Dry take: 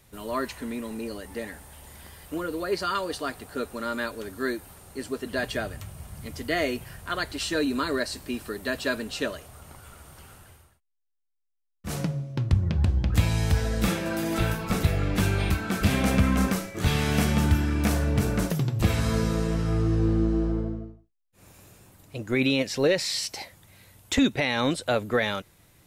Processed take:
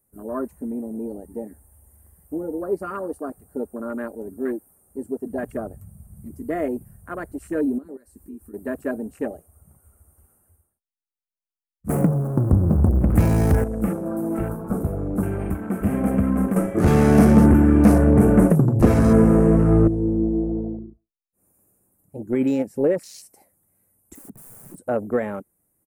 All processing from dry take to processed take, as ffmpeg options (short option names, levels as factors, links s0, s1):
-filter_complex "[0:a]asettb=1/sr,asplit=3[s0][s1][s2];[s0]atrim=end=7.784[s3];[s1]atrim=start=7.78:end=8.54,asetpts=PTS-STARTPTS,afade=t=in:d=0.004:c=qsin,afade=t=out:st=0.756:d=0.004:c=qsin,bandreject=f=630:w=6,asubboost=boost=4.5:cutoff=94,acompressor=threshold=0.0112:ratio=3:attack=3.2:release=140:knee=1:detection=peak[s4];[s2]atrim=start=8.536[s5];[s3][s4]acrossfade=d=0.004:c1=hsin:c2=qsin[s6];[s6][s5]acrossfade=d=0.004:c1=qsin:c2=hsin,asettb=1/sr,asplit=3[s7][s8][s9];[s7]atrim=end=11.894[s10];[s8]atrim=start=11.89:end=13.64,asetpts=PTS-STARTPTS,afade=t=in:d=0.004:c=qsin,afade=t=out:st=1.746:d=0.004:c=qsin,aeval=exprs='val(0)+0.5*0.0316*sgn(val(0))':c=same,acontrast=81[s11];[s9]atrim=start=13.636[s12];[s10][s11]acrossfade=d=0.004:c1=hsin:c2=qsin[s13];[s13][s12]acrossfade=d=0.004:c1=qsin:c2=hsin,asettb=1/sr,asplit=3[s14][s15][s16];[s14]atrim=end=16.564[s17];[s15]atrim=start=16.56:end=19.88,asetpts=PTS-STARTPTS,afade=t=in:d=0.004:c=qsin,afade=t=out:st=3.316:d=0.004:c=qsin,lowpass=11000,aeval=exprs='0.376*sin(PI/2*2.24*val(0)/0.376)':c=same[s18];[s16]atrim=start=19.876[s19];[s17][s18]acrossfade=d=0.004:c1=hsin:c2=qsin[s20];[s20][s19]acrossfade=d=0.004:c1=qsin:c2=hsin,asettb=1/sr,asplit=3[s21][s22][s23];[s21]atrim=end=24.154[s24];[s22]atrim=start=24.15:end=24.78,asetpts=PTS-STARTPTS,afade=t=in:d=0.004:c=qsin,afade=t=out:st=0.626:d=0.004:c=qsin,highshelf=f=4800:g=-6,acompressor=threshold=0.0891:ratio=8:attack=3.2:release=140:knee=1:detection=peak,aeval=exprs='(mod(31.6*val(0)+1,2)-1)/31.6':c=same[s25];[s23]atrim=start=24.776[s26];[s24][s25]acrossfade=d=0.004:c1=hsin:c2=qsin[s27];[s27][s26]acrossfade=d=0.004:c1=qsin:c2=hsin,bandreject=f=960:w=18,afwtdn=0.0282,firequalizer=gain_entry='entry(130,0);entry(210,8);entry(3500,-19);entry(9100,14)':delay=0.05:min_phase=1,volume=0.708"